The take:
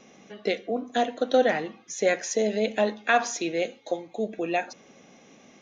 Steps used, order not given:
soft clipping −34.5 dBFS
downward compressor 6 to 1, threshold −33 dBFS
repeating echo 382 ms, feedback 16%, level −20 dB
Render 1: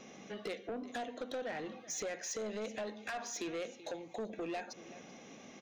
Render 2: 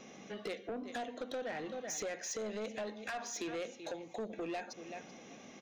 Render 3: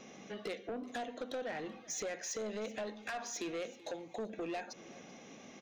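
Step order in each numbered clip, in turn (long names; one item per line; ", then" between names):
downward compressor, then repeating echo, then soft clipping
repeating echo, then downward compressor, then soft clipping
downward compressor, then soft clipping, then repeating echo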